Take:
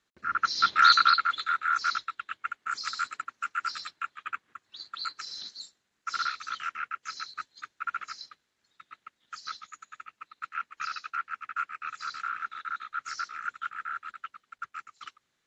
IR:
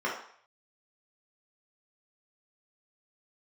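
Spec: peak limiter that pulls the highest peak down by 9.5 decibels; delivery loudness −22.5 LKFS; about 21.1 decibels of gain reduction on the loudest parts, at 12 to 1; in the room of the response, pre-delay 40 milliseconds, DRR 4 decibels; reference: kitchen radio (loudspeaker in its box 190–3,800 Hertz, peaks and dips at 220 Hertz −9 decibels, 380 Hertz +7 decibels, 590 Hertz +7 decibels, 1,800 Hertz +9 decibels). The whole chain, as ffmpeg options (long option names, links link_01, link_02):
-filter_complex "[0:a]acompressor=threshold=-37dB:ratio=12,alimiter=level_in=11.5dB:limit=-24dB:level=0:latency=1,volume=-11.5dB,asplit=2[link_01][link_02];[1:a]atrim=start_sample=2205,adelay=40[link_03];[link_02][link_03]afir=irnorm=-1:irlink=0,volume=-14dB[link_04];[link_01][link_04]amix=inputs=2:normalize=0,highpass=190,equalizer=frequency=220:width_type=q:width=4:gain=-9,equalizer=frequency=380:width_type=q:width=4:gain=7,equalizer=frequency=590:width_type=q:width=4:gain=7,equalizer=frequency=1800:width_type=q:width=4:gain=9,lowpass=frequency=3800:width=0.5412,lowpass=frequency=3800:width=1.3066,volume=20.5dB"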